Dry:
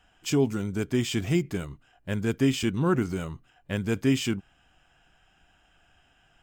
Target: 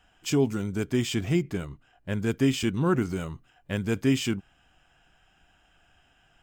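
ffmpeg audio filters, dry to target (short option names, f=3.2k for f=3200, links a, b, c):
-filter_complex "[0:a]asettb=1/sr,asplit=3[a][b][c];[a]atrim=end=1.144[d];[b]atrim=start=1.14:end=2.2,asetpts=PTS-STARTPTS,afade=t=in:d=0.004:c=qsin,afade=t=out:st=1.056:d=0.004:c=qsin,highshelf=f=4.4k:g=-5[e];[c]atrim=start=2.196[f];[d][e]acrossfade=d=0.004:c1=hsin:c2=qsin[g];[g][f]acrossfade=d=0.004:c1=qsin:c2=hsin"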